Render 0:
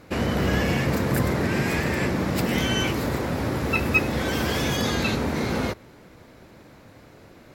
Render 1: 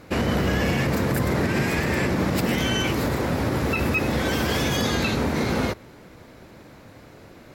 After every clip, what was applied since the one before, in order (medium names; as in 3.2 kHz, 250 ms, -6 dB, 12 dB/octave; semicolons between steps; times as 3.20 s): peak limiter -16 dBFS, peak gain reduction 8 dB; trim +2.5 dB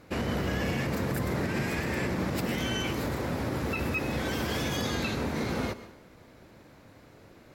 plate-style reverb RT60 0.62 s, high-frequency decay 0.9×, pre-delay 105 ms, DRR 14 dB; trim -7.5 dB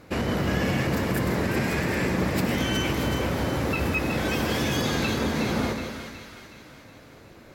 two-band feedback delay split 1.2 kHz, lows 170 ms, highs 369 ms, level -7 dB; trim +4 dB